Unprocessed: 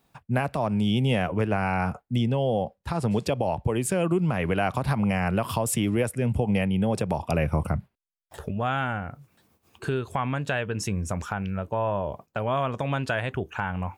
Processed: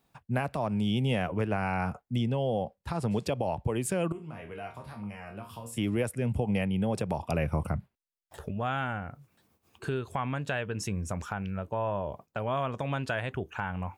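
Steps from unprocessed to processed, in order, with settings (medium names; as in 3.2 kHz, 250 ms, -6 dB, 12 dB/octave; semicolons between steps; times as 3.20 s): 4.12–5.78 s: chord resonator D#2 sus4, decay 0.31 s; trim -4.5 dB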